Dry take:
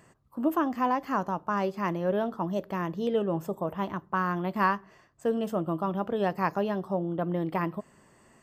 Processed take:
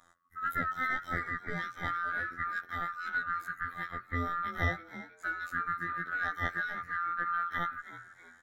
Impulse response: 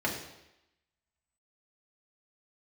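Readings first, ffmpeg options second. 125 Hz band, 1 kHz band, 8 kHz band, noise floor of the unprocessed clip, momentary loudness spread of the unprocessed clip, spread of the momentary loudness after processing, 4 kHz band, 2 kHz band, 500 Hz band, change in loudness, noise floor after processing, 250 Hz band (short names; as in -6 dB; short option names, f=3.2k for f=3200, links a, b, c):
-7.0 dB, -4.0 dB, n/a, -61 dBFS, 6 LU, 7 LU, -2.5 dB, +5.5 dB, -18.5 dB, -4.5 dB, -61 dBFS, -16.5 dB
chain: -filter_complex "[0:a]afftfilt=real='real(if(lt(b,960),b+48*(1-2*mod(floor(b/48),2)),b),0)':imag='imag(if(lt(b,960),b+48*(1-2*mod(floor(b/48),2)),b),0)':win_size=2048:overlap=0.75,acontrast=82,aeval=exprs='0.531*(cos(1*acos(clip(val(0)/0.531,-1,1)))-cos(1*PI/2))+0.0188*(cos(2*acos(clip(val(0)/0.531,-1,1)))-cos(2*PI/2))+0.015*(cos(3*acos(clip(val(0)/0.531,-1,1)))-cos(3*PI/2))+0.00299*(cos(7*acos(clip(val(0)/0.531,-1,1)))-cos(7*PI/2))':c=same,afftfilt=real='hypot(re,im)*cos(PI*b)':imag='0':win_size=2048:overlap=0.75,asplit=5[a][b][c][d][e];[b]adelay=322,afreqshift=120,volume=-15dB[f];[c]adelay=644,afreqshift=240,volume=-23dB[g];[d]adelay=966,afreqshift=360,volume=-30.9dB[h];[e]adelay=1288,afreqshift=480,volume=-38.9dB[i];[a][f][g][h][i]amix=inputs=5:normalize=0,volume=-8.5dB"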